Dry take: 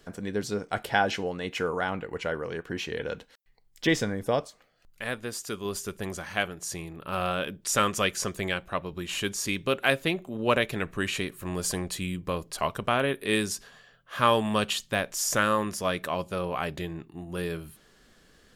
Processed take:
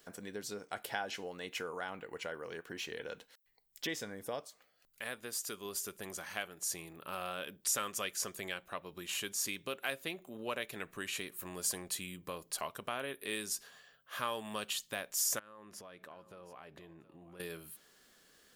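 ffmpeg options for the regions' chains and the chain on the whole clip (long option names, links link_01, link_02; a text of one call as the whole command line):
ffmpeg -i in.wav -filter_complex "[0:a]asettb=1/sr,asplit=3[link_01][link_02][link_03];[link_01]atrim=end=15.394[link_04];[link_02]atrim=start=15.39:end=17.4,asetpts=PTS-STARTPTS,afade=type=in:duration=0.004:curve=qsin,afade=type=out:start_time=2.006:duration=0.004:curve=qsin,lowpass=frequency=1700:poles=1,acompressor=threshold=-40dB:ratio=16:attack=3.2:release=140:knee=1:detection=peak,aecho=1:1:722:0.168,atrim=end_sample=88641[link_05];[link_03]atrim=start=17.396[link_06];[link_04][link_05]acrossfade=duration=0.004:curve1=hsin:curve2=qsin[link_07];[link_07][link_06]acrossfade=duration=0.004:curve1=qsin:curve2=hsin,highshelf=frequency=6100:gain=-6,acompressor=threshold=-34dB:ratio=2,aemphasis=mode=production:type=bsi,volume=-6dB" out.wav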